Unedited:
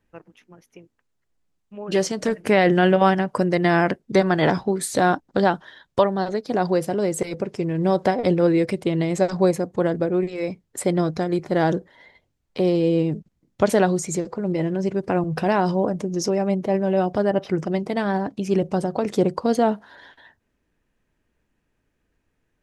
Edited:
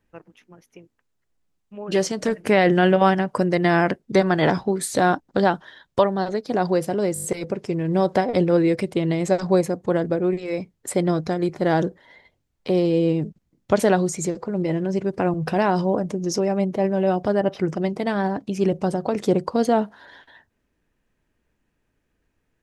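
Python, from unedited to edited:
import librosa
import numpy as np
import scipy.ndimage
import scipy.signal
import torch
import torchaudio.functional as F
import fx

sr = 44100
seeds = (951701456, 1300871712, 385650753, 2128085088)

y = fx.edit(x, sr, fx.stutter(start_s=7.14, slice_s=0.02, count=6), tone=tone)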